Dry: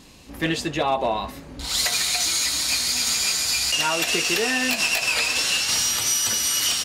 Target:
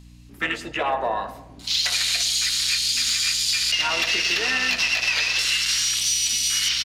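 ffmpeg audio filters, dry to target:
-filter_complex "[0:a]afwtdn=0.0398,highpass=61,tiltshelf=f=790:g=-8,acrossover=split=6000[a][b];[b]alimiter=limit=-19dB:level=0:latency=1:release=56[c];[a][c]amix=inputs=2:normalize=0,acrossover=split=150|370[d][e][f];[d]acompressor=threshold=-60dB:ratio=4[g];[e]acompressor=threshold=-39dB:ratio=4[h];[f]acompressor=threshold=-19dB:ratio=4[i];[g][h][i]amix=inputs=3:normalize=0,aeval=exprs='val(0)+0.00562*(sin(2*PI*60*n/s)+sin(2*PI*2*60*n/s)/2+sin(2*PI*3*60*n/s)/3+sin(2*PI*4*60*n/s)/4+sin(2*PI*5*60*n/s)/5)':c=same,asplit=2[j][k];[k]asetrate=33038,aresample=44100,atempo=1.33484,volume=-11dB[l];[j][l]amix=inputs=2:normalize=0,asoftclip=type=tanh:threshold=-9.5dB,asplit=2[m][n];[n]adelay=107,lowpass=f=1.3k:p=1,volume=-11dB,asplit=2[o][p];[p]adelay=107,lowpass=f=1.3k:p=1,volume=0.52,asplit=2[q][r];[r]adelay=107,lowpass=f=1.3k:p=1,volume=0.52,asplit=2[s][t];[t]adelay=107,lowpass=f=1.3k:p=1,volume=0.52,asplit=2[u][v];[v]adelay=107,lowpass=f=1.3k:p=1,volume=0.52,asplit=2[w][x];[x]adelay=107,lowpass=f=1.3k:p=1,volume=0.52[y];[o][q][s][u][w][y]amix=inputs=6:normalize=0[z];[m][z]amix=inputs=2:normalize=0"

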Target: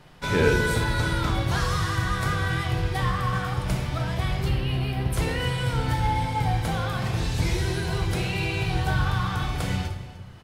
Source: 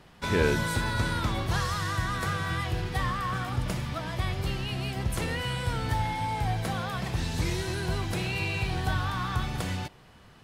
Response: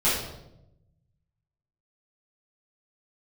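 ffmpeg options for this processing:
-filter_complex "[0:a]asettb=1/sr,asplit=3[a][b][c];[a]atrim=end=4.494[d];[b]atrim=start=4.49:end=5.13,asetpts=PTS-STARTPTS,afade=t=in:d=0.004:c=qsin,afade=t=out:st=0.636:d=0.004:c=qsin,equalizer=f=6.8k:w=1.5:g=-14[e];[c]atrim=start=5.126[f];[d][e]acrossfade=d=0.004:c1=hsin:c2=qsin[g];[g][f]acrossfade=d=0.004:c1=qsin:c2=hsin,aecho=1:1:301:0.141,asplit=2[h][i];[1:a]atrim=start_sample=2205[j];[i][j]afir=irnorm=-1:irlink=0,volume=-15.5dB[k];[h][k]amix=inputs=2:normalize=0"

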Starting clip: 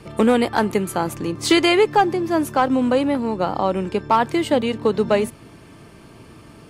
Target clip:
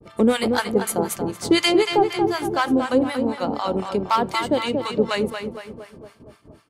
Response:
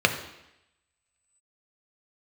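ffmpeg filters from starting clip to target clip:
-filter_complex "[0:a]asplit=2[a][b];[b]adelay=231,lowpass=f=3.4k:p=1,volume=-6dB,asplit=2[c][d];[d]adelay=231,lowpass=f=3.4k:p=1,volume=0.53,asplit=2[e][f];[f]adelay=231,lowpass=f=3.4k:p=1,volume=0.53,asplit=2[g][h];[h]adelay=231,lowpass=f=3.4k:p=1,volume=0.53,asplit=2[i][j];[j]adelay=231,lowpass=f=3.4k:p=1,volume=0.53,asplit=2[k][l];[l]adelay=231,lowpass=f=3.4k:p=1,volume=0.53,asplit=2[m][n];[n]adelay=231,lowpass=f=3.4k:p=1,volume=0.53[o];[a][c][e][g][i][k][m][o]amix=inputs=8:normalize=0,acrossover=split=830[p][q];[p]aeval=exprs='val(0)*(1-1/2+1/2*cos(2*PI*4*n/s))':c=same[r];[q]aeval=exprs='val(0)*(1-1/2-1/2*cos(2*PI*4*n/s))':c=same[s];[r][s]amix=inputs=2:normalize=0,agate=range=-33dB:threshold=-42dB:ratio=3:detection=peak,asplit=2[t][u];[1:a]atrim=start_sample=2205,afade=t=out:st=0.14:d=0.01,atrim=end_sample=6615[v];[u][v]afir=irnorm=-1:irlink=0,volume=-29dB[w];[t][w]amix=inputs=2:normalize=0,adynamicequalizer=threshold=0.0126:dfrequency=2400:dqfactor=0.7:tfrequency=2400:tqfactor=0.7:attack=5:release=100:ratio=0.375:range=3.5:mode=boostabove:tftype=highshelf"

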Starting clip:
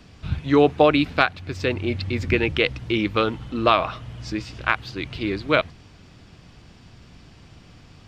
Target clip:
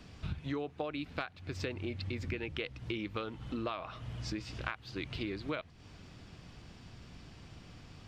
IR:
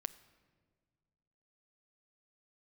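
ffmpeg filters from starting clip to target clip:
-af "acompressor=threshold=-30dB:ratio=10,volume=-4.5dB"

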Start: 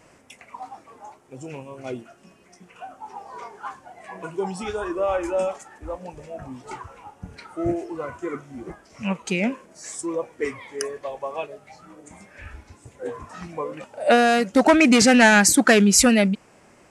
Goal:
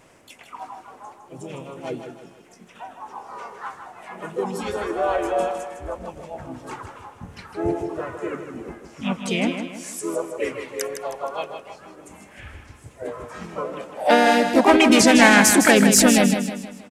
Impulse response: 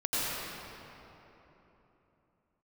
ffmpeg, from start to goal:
-filter_complex "[0:a]asplit=3[a][b][c];[b]asetrate=37084,aresample=44100,atempo=1.18921,volume=-15dB[d];[c]asetrate=55563,aresample=44100,atempo=0.793701,volume=-4dB[e];[a][d][e]amix=inputs=3:normalize=0,aecho=1:1:157|314|471|628|785:0.398|0.175|0.0771|0.0339|0.0149,volume=-1dB"

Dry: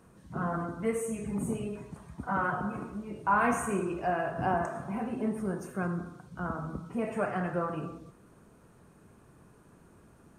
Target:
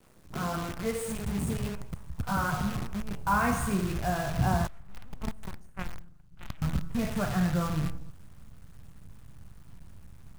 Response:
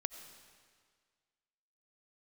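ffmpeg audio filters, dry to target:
-filter_complex "[0:a]acrusher=bits=7:dc=4:mix=0:aa=0.000001,asettb=1/sr,asplit=3[a][b][c];[a]atrim=end=4.674[d];[b]atrim=start=4.67:end=6.62,asetpts=PTS-STARTPTS,afade=t=in:d=0.004:c=qsin,afade=t=out:st=1.946:d=0.004:c=qsin,aeval=exprs='0.106*(cos(1*acos(clip(val(0)/0.106,-1,1)))-cos(1*PI/2))+0.0422*(cos(3*acos(clip(val(0)/0.106,-1,1)))-cos(3*PI/2))+0.00075*(cos(5*acos(clip(val(0)/0.106,-1,1)))-cos(5*PI/2))+0.00133*(cos(8*acos(clip(val(0)/0.106,-1,1)))-cos(8*PI/2))':c=same[e];[c]atrim=start=6.616[f];[d][e]acrossfade=d=0.004:c1=hsin:c2=qsin[g];[g][f]acrossfade=d=0.004:c1=qsin:c2=hsin,asubboost=boost=10:cutoff=120"

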